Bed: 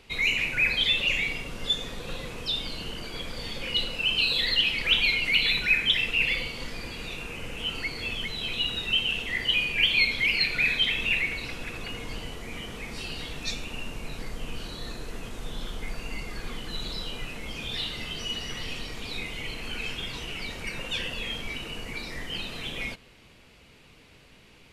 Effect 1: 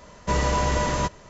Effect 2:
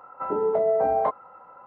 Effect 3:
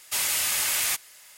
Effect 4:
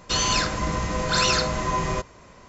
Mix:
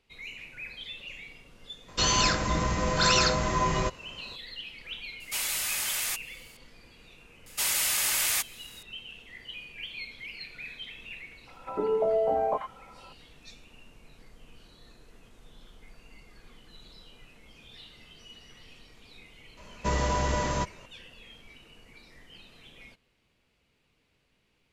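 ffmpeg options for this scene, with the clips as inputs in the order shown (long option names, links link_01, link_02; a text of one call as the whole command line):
ffmpeg -i bed.wav -i cue0.wav -i cue1.wav -i cue2.wav -i cue3.wav -filter_complex "[3:a]asplit=2[link_01][link_02];[0:a]volume=-17.5dB[link_03];[2:a]acrossover=split=1200[link_04][link_05];[link_05]adelay=90[link_06];[link_04][link_06]amix=inputs=2:normalize=0[link_07];[4:a]atrim=end=2.48,asetpts=PTS-STARTPTS,volume=-1.5dB,afade=type=in:duration=0.004:curve=hsin,afade=type=out:start_time=2.476:duration=0.004:curve=hsin,adelay=1880[link_08];[link_01]atrim=end=1.37,asetpts=PTS-STARTPTS,volume=-5.5dB,afade=type=in:duration=0.004:curve=hsin,afade=type=out:start_time=1.366:duration=0.004:curve=hsin,adelay=5200[link_09];[link_02]atrim=end=1.37,asetpts=PTS-STARTPTS,volume=-1.5dB,afade=type=in:duration=0.004:curve=hsin,afade=type=out:start_time=1.366:duration=0.004:curve=hsin,adelay=328986S[link_10];[link_07]atrim=end=1.66,asetpts=PTS-STARTPTS,volume=-2.5dB,afade=type=in:duration=0.004:curve=hsin,afade=type=out:start_time=1.656:duration=0.004:curve=hsin,adelay=11470[link_11];[1:a]atrim=end=1.29,asetpts=PTS-STARTPTS,volume=-4.5dB,afade=type=in:duration=0.004:curve=hsin,afade=type=out:start_time=1.286:duration=0.004:curve=hsin,adelay=19570[link_12];[link_03][link_08][link_09][link_10][link_11][link_12]amix=inputs=6:normalize=0" out.wav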